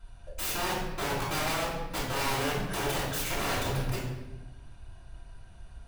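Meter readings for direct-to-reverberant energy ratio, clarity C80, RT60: -9.0 dB, 4.5 dB, 1.1 s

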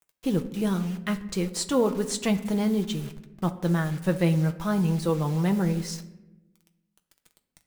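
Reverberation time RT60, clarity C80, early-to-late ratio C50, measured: 1.0 s, 16.5 dB, 14.5 dB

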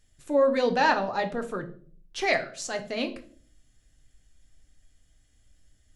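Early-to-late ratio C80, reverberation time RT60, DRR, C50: 18.5 dB, 0.50 s, 5.5 dB, 14.0 dB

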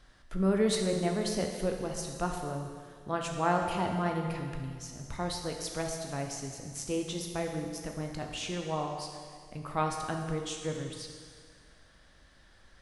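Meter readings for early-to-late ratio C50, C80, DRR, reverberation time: 4.0 dB, 5.5 dB, 2.0 dB, 1.9 s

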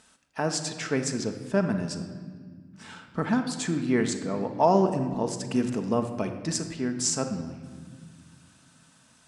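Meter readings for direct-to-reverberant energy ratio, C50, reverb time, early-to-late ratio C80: 5.0 dB, 8.0 dB, 1.8 s, 10.0 dB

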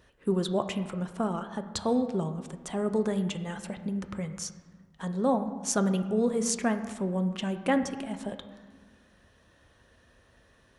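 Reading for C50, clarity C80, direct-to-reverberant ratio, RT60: 10.5 dB, 12.0 dB, 8.0 dB, 1.4 s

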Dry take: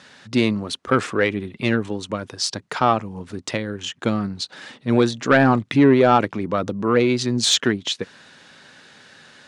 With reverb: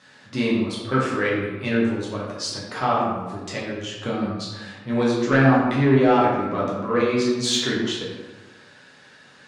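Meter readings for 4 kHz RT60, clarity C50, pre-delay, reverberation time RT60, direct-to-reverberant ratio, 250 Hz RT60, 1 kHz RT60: 0.70 s, 1.0 dB, 7 ms, 1.2 s, -7.0 dB, 1.4 s, 1.2 s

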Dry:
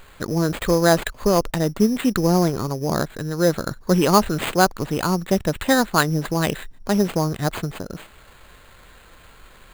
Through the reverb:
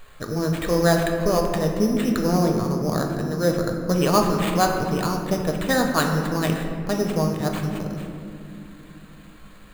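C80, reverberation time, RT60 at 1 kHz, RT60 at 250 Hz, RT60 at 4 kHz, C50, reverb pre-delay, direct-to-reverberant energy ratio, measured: 5.5 dB, 2.6 s, 2.1 s, 4.6 s, 1.1 s, 4.5 dB, 4 ms, 2.0 dB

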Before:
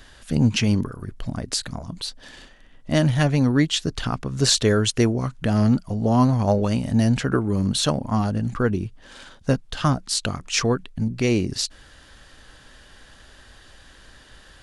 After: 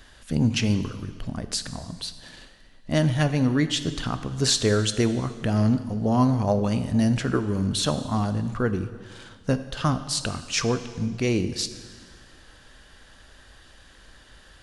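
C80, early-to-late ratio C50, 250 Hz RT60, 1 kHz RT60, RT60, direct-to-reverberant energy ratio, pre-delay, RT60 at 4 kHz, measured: 13.0 dB, 12.0 dB, 1.9 s, 1.7 s, 1.7 s, 10.5 dB, 7 ms, 1.6 s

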